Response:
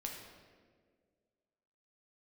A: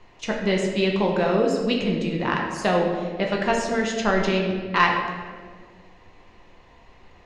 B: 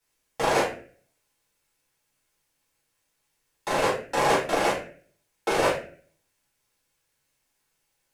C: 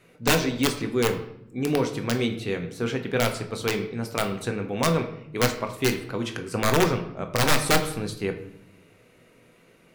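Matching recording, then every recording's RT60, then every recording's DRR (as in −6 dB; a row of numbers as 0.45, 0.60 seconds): A; 1.8, 0.45, 0.75 seconds; −0.5, −8.5, 5.0 decibels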